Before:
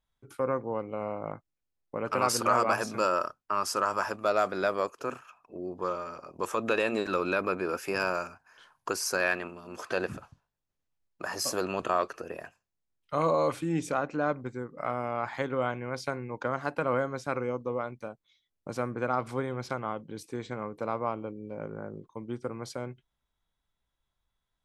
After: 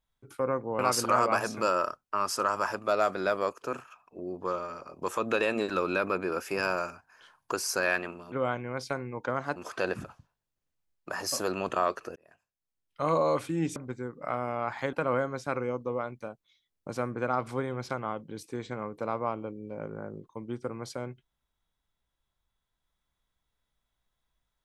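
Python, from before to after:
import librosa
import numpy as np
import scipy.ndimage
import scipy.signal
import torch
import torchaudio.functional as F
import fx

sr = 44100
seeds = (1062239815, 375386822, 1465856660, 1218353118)

y = fx.edit(x, sr, fx.cut(start_s=0.79, length_s=1.37),
    fx.fade_in_span(start_s=12.29, length_s=0.95),
    fx.cut(start_s=13.89, length_s=0.43),
    fx.move(start_s=15.49, length_s=1.24, to_s=9.69), tone=tone)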